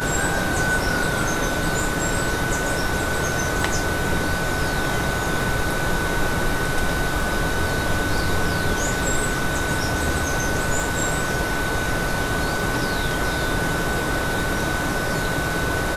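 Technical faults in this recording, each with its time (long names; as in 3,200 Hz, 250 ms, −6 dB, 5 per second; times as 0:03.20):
scratch tick 33 1/3 rpm −15 dBFS
whistle 1,500 Hz −27 dBFS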